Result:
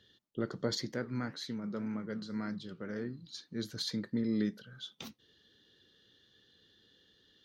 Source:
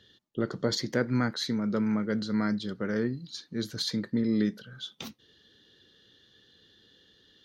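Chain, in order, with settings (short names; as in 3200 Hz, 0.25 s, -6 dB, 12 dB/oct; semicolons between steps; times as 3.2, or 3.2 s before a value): 0.92–3.27 flange 1.9 Hz, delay 5.6 ms, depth 9.8 ms, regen -80%; gain -5.5 dB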